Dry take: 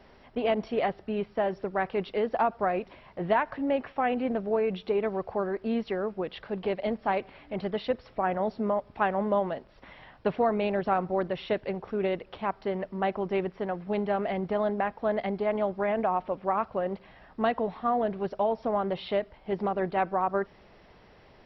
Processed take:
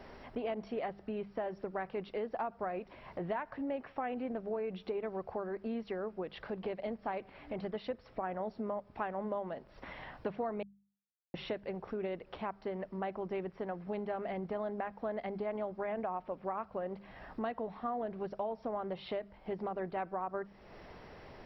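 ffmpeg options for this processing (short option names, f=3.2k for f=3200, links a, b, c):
-filter_complex "[0:a]asplit=3[a][b][c];[a]atrim=end=10.63,asetpts=PTS-STARTPTS,afade=t=out:st=10.626:d=0.004:c=hsin[d];[b]atrim=start=10.63:end=11.34,asetpts=PTS-STARTPTS,volume=0[e];[c]atrim=start=11.34,asetpts=PTS-STARTPTS,afade=t=in:d=0.004:c=hsin[f];[d][e][f]concat=n=3:v=0:a=1,equalizer=f=3.4k:w=1.5:g=-4,bandreject=f=50:t=h:w=6,bandreject=f=100:t=h:w=6,bandreject=f=150:t=h:w=6,bandreject=f=200:t=h:w=6,acompressor=threshold=-46dB:ratio=2.5,volume=4dB"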